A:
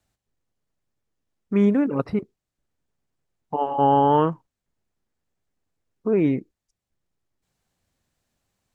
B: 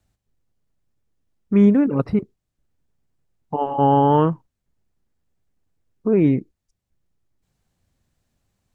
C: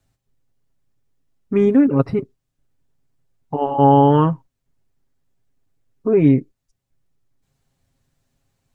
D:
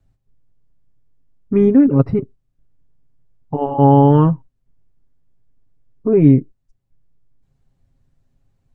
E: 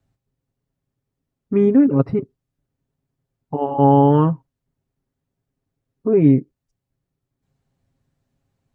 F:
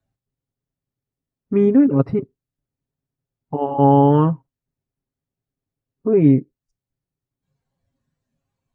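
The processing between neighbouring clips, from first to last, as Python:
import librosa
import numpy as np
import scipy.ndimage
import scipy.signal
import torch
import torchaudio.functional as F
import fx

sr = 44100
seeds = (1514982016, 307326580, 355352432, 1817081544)

y1 = fx.low_shelf(x, sr, hz=240.0, db=9.0)
y2 = y1 + 0.55 * np.pad(y1, (int(7.4 * sr / 1000.0), 0))[:len(y1)]
y2 = y2 * 10.0 ** (1.0 / 20.0)
y3 = fx.tilt_eq(y2, sr, slope=-2.5)
y3 = y3 * 10.0 ** (-2.0 / 20.0)
y4 = fx.highpass(y3, sr, hz=160.0, slope=6)
y4 = y4 * 10.0 ** (-1.0 / 20.0)
y5 = fx.noise_reduce_blind(y4, sr, reduce_db=8)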